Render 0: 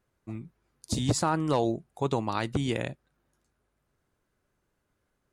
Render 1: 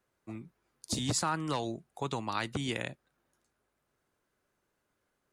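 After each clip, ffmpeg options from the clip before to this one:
-filter_complex "[0:a]lowshelf=f=170:g=-11,acrossover=split=240|1000[a][b][c];[b]acompressor=threshold=-38dB:ratio=6[d];[a][d][c]amix=inputs=3:normalize=0"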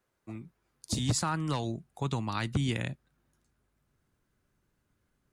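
-af "asubboost=boost=4.5:cutoff=240"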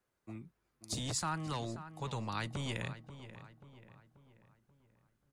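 -filter_complex "[0:a]acrossover=split=460|5300[a][b][c];[a]asoftclip=type=hard:threshold=-33.5dB[d];[d][b][c]amix=inputs=3:normalize=0,asplit=2[e][f];[f]adelay=535,lowpass=f=2.8k:p=1,volume=-12.5dB,asplit=2[g][h];[h]adelay=535,lowpass=f=2.8k:p=1,volume=0.48,asplit=2[i][j];[j]adelay=535,lowpass=f=2.8k:p=1,volume=0.48,asplit=2[k][l];[l]adelay=535,lowpass=f=2.8k:p=1,volume=0.48,asplit=2[m][n];[n]adelay=535,lowpass=f=2.8k:p=1,volume=0.48[o];[e][g][i][k][m][o]amix=inputs=6:normalize=0,volume=-4.5dB"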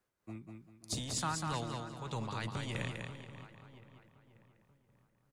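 -af "tremolo=f=3.2:d=0.49,aecho=1:1:196|392|588|784:0.596|0.179|0.0536|0.0161,volume=1dB"

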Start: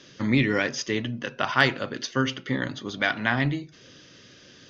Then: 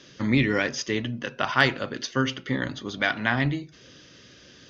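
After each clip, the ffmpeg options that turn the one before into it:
-af "equalizer=f=61:w=5.1:g=13"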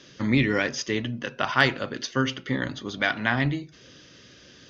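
-af anull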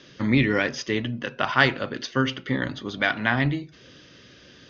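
-af "lowpass=4.9k,volume=1.5dB"

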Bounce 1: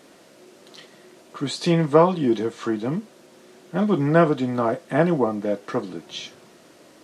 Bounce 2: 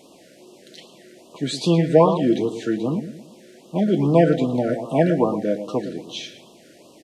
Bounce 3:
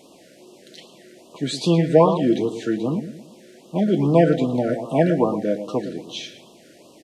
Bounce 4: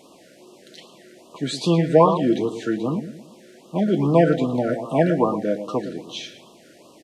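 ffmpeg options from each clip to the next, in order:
-filter_complex "[0:a]bandreject=f=1.3k:w=7.8,asplit=2[a][b];[b]adelay=113,lowpass=f=3.6k:p=1,volume=-10dB,asplit=2[c][d];[d]adelay=113,lowpass=f=3.6k:p=1,volume=0.42,asplit=2[e][f];[f]adelay=113,lowpass=f=3.6k:p=1,volume=0.42,asplit=2[g][h];[h]adelay=113,lowpass=f=3.6k:p=1,volume=0.42[i];[a][c][e][g][i]amix=inputs=5:normalize=0,afftfilt=real='re*(1-between(b*sr/1024,910*pow(1900/910,0.5+0.5*sin(2*PI*2.5*pts/sr))/1.41,910*pow(1900/910,0.5+0.5*sin(2*PI*2.5*pts/sr))*1.41))':imag='im*(1-between(b*sr/1024,910*pow(1900/910,0.5+0.5*sin(2*PI*2.5*pts/sr))/1.41,910*pow(1900/910,0.5+0.5*sin(2*PI*2.5*pts/sr))*1.41))':win_size=1024:overlap=0.75,volume=1.5dB"
-af anull
-af "equalizer=f=1.2k:w=2.2:g=7,volume=-1dB"

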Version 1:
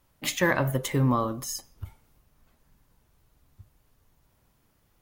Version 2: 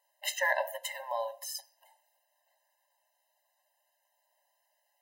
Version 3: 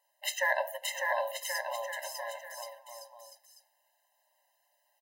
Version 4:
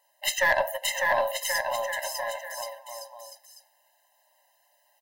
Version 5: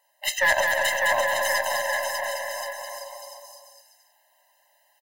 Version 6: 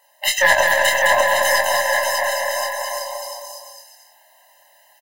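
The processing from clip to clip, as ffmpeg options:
-af "afftfilt=real='re*eq(mod(floor(b*sr/1024/530),2),1)':imag='im*eq(mod(floor(b*sr/1024/530),2),1)':win_size=1024:overlap=0.75,volume=-1.5dB"
-af "aecho=1:1:600|1080|1464|1771|2017:0.631|0.398|0.251|0.158|0.1"
-af "aeval=exprs='(tanh(11.2*val(0)+0.25)-tanh(0.25))/11.2':c=same,volume=8dB"
-filter_complex "[0:a]equalizer=f=1.8k:w=1.5:g=2.5,asplit=2[a][b];[b]aecho=0:1:210|346.5|435.2|492.9|530.4:0.631|0.398|0.251|0.158|0.1[c];[a][c]amix=inputs=2:normalize=0"
-filter_complex "[0:a]asplit=2[a][b];[b]acompressor=threshold=-31dB:ratio=6,volume=-0.5dB[c];[a][c]amix=inputs=2:normalize=0,asplit=2[d][e];[e]adelay=24,volume=-4dB[f];[d][f]amix=inputs=2:normalize=0,volume=3.5dB"

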